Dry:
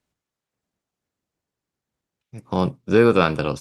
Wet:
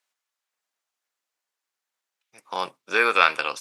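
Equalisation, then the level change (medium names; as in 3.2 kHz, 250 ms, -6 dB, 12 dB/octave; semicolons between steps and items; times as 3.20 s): high-pass 1 kHz 12 dB/octave; dynamic bell 2.1 kHz, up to +7 dB, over -38 dBFS, Q 1.8; +3.0 dB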